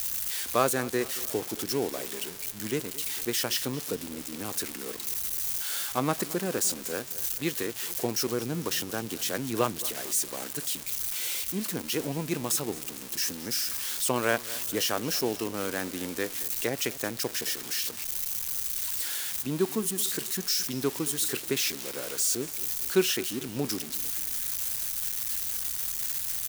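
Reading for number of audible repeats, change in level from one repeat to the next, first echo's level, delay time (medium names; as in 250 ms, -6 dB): 3, -6.0 dB, -18.5 dB, 223 ms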